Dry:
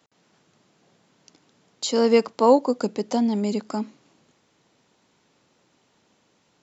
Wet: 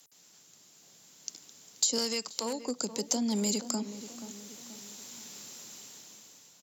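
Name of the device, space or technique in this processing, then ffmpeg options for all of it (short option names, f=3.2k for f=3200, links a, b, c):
FM broadcast chain: -filter_complex "[0:a]highpass=f=73:w=0.5412,highpass=f=73:w=1.3066,dynaudnorm=f=340:g=7:m=15dB,acrossover=split=230|560[a][b][c];[a]acompressor=threshold=-24dB:ratio=4[d];[b]acompressor=threshold=-24dB:ratio=4[e];[c]acompressor=threshold=-33dB:ratio=4[f];[d][e][f]amix=inputs=3:normalize=0,aemphasis=mode=production:type=75fm,alimiter=limit=-16.5dB:level=0:latency=1:release=276,asoftclip=type=hard:threshold=-18.5dB,lowpass=f=15k:w=0.5412,lowpass=f=15k:w=1.3066,aemphasis=mode=production:type=75fm,asettb=1/sr,asplit=3[g][h][i];[g]atrim=end=1.984[j];[h]atrim=start=1.98:end=2.64,asetpts=PTS-STARTPTS,afade=t=in:d=0.004:c=qsin,afade=t=out:st=0.656:d=0.004:c=qsin,tiltshelf=f=970:g=-6[k];[i]atrim=start=2.636[l];[j][k]acrossfade=d=0.004:c1=hsin:c2=qsin[m];[m][l]acrossfade=d=0.004:c1=qsin:c2=hsin,asplit=2[n][o];[o]adelay=480,lowpass=f=1.7k:p=1,volume=-12dB,asplit=2[p][q];[q]adelay=480,lowpass=f=1.7k:p=1,volume=0.48,asplit=2[r][s];[s]adelay=480,lowpass=f=1.7k:p=1,volume=0.48,asplit=2[t][u];[u]adelay=480,lowpass=f=1.7k:p=1,volume=0.48,asplit=2[v][w];[w]adelay=480,lowpass=f=1.7k:p=1,volume=0.48[x];[n][p][r][t][v][x]amix=inputs=6:normalize=0,volume=-6dB"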